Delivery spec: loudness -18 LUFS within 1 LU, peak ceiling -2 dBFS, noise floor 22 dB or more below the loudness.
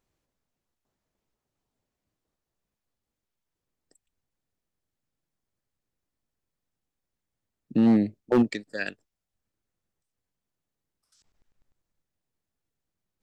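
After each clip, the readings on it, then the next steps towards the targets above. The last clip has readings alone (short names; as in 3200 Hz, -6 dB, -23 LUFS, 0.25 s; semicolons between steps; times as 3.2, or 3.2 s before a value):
clipped 0.3%; flat tops at -14.5 dBFS; loudness -25.0 LUFS; peak -14.5 dBFS; loudness target -18.0 LUFS
-> clip repair -14.5 dBFS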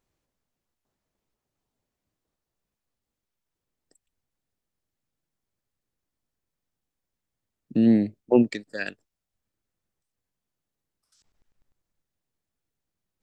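clipped 0.0%; loudness -23.5 LUFS; peak -6.5 dBFS; loudness target -18.0 LUFS
-> gain +5.5 dB; limiter -2 dBFS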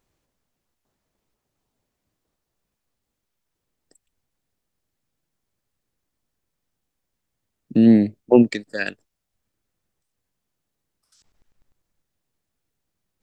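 loudness -18.0 LUFS; peak -2.0 dBFS; noise floor -80 dBFS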